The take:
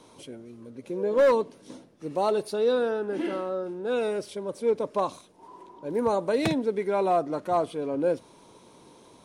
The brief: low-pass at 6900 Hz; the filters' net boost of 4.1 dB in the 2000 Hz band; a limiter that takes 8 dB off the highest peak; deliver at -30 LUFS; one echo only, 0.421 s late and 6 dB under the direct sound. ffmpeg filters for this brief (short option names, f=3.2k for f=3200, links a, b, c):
-af "lowpass=6.9k,equalizer=f=2k:t=o:g=5.5,alimiter=limit=-20dB:level=0:latency=1,aecho=1:1:421:0.501,volume=-1dB"